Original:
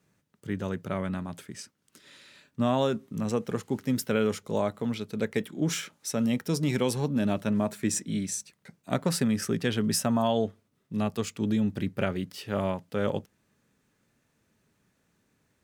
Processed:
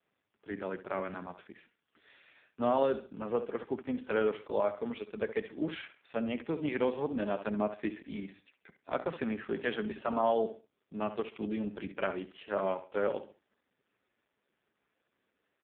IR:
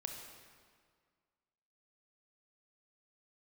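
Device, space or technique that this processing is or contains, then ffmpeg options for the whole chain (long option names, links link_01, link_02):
telephone: -af "deesser=0.3,highpass=350,lowpass=3400,aecho=1:1:67|134|201:0.251|0.0754|0.0226" -ar 8000 -c:a libopencore_amrnb -b:a 4750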